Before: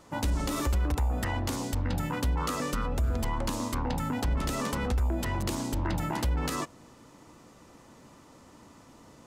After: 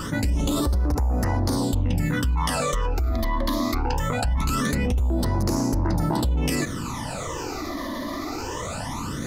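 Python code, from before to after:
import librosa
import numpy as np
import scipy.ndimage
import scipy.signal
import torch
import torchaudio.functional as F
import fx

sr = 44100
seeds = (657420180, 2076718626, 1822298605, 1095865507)

y = fx.phaser_stages(x, sr, stages=12, low_hz=140.0, high_hz=3200.0, hz=0.22, feedback_pct=30)
y = fx.env_flatten(y, sr, amount_pct=70)
y = y * 10.0 ** (2.0 / 20.0)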